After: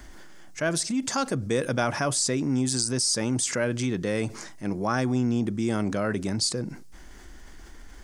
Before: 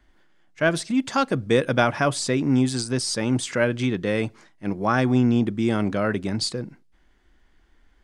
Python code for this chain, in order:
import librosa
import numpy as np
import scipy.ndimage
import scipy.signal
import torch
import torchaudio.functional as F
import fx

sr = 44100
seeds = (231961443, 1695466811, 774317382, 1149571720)

y = fx.high_shelf_res(x, sr, hz=4500.0, db=7.5, q=1.5)
y = fx.env_flatten(y, sr, amount_pct=50)
y = y * 10.0 ** (-7.0 / 20.0)